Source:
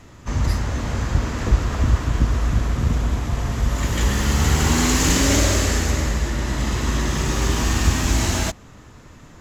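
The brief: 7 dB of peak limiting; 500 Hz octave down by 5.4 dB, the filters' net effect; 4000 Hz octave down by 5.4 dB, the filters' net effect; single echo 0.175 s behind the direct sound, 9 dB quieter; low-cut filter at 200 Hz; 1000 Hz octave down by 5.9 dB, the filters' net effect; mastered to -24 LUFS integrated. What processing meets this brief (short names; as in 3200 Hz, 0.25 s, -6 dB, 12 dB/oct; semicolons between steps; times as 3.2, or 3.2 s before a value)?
HPF 200 Hz; bell 500 Hz -5.5 dB; bell 1000 Hz -5.5 dB; bell 4000 Hz -7 dB; limiter -17 dBFS; echo 0.175 s -9 dB; gain +4.5 dB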